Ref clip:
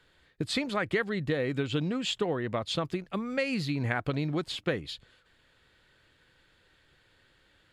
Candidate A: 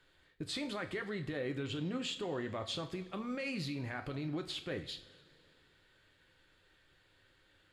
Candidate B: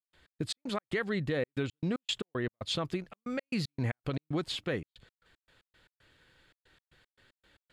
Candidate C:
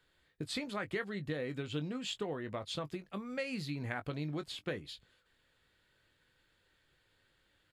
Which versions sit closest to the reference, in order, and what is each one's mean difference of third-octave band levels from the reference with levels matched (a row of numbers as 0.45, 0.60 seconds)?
C, A, B; 1.5, 5.0, 7.5 decibels